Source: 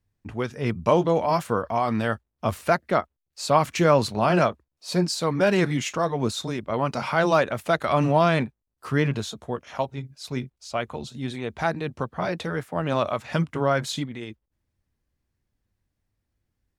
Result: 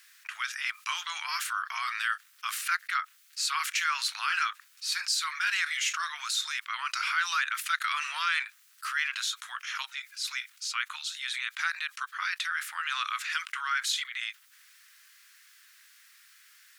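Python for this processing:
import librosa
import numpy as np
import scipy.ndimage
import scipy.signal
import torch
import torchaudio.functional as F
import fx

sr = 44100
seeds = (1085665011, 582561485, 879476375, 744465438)

y = scipy.signal.sosfilt(scipy.signal.butter(8, 1300.0, 'highpass', fs=sr, output='sos'), x)
y = fx.env_flatten(y, sr, amount_pct=50)
y = y * 10.0 ** (-1.5 / 20.0)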